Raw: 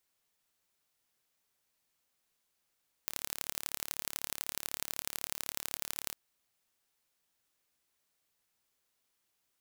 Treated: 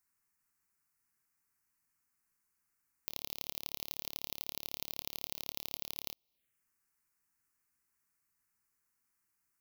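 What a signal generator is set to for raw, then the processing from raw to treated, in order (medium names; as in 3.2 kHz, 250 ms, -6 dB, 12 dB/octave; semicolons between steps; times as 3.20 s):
pulse train 36.1 per s, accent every 3, -6.5 dBFS 3.05 s
touch-sensitive phaser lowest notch 510 Hz, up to 1.6 kHz, full sweep at -59.5 dBFS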